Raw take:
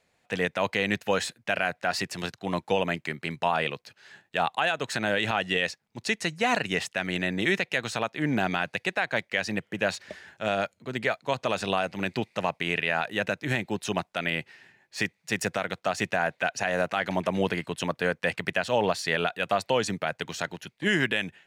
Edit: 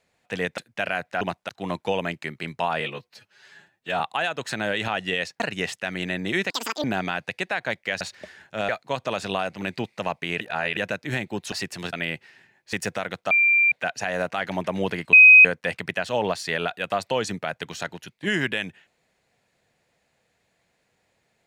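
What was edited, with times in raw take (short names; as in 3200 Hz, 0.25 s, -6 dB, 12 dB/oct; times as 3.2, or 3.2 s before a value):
0.58–1.28 cut
1.91–2.32 swap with 13.9–14.18
3.63–4.43 stretch 1.5×
5.83–6.53 cut
7.63–8.3 speed 198%
9.47–9.88 cut
10.56–11.07 cut
12.79–13.15 reverse
14.98–15.32 cut
15.9–16.31 bleep 2370 Hz -15 dBFS
17.72–18.04 bleep 2520 Hz -6.5 dBFS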